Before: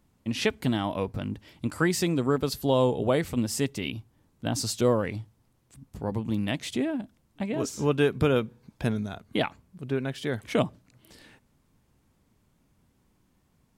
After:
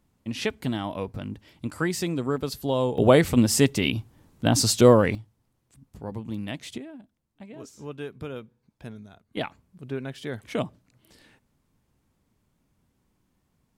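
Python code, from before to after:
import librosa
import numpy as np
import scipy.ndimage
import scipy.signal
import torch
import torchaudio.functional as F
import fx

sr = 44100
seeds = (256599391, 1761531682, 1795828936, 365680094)

y = fx.gain(x, sr, db=fx.steps((0.0, -2.0), (2.98, 8.0), (5.15, -4.5), (6.78, -13.0), (9.37, -3.5)))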